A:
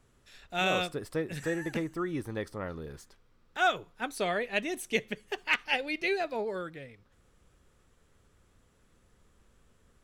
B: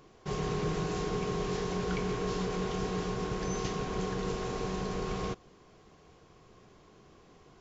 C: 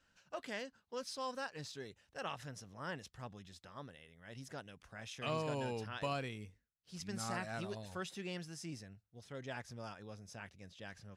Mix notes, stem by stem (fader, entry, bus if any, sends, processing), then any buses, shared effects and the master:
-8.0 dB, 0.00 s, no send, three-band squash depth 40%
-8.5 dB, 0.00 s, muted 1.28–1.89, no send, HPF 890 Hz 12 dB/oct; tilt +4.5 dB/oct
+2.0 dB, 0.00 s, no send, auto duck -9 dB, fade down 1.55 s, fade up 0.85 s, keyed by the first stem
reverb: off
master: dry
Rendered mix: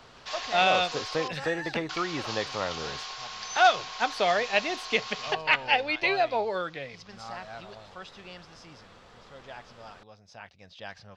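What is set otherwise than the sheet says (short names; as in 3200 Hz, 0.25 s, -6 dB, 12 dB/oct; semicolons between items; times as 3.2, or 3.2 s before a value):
stem A -8.0 dB -> -1.5 dB; master: extra EQ curve 350 Hz 0 dB, 760 Hz +12 dB, 1700 Hz +6 dB, 4600 Hz +10 dB, 10000 Hz -14 dB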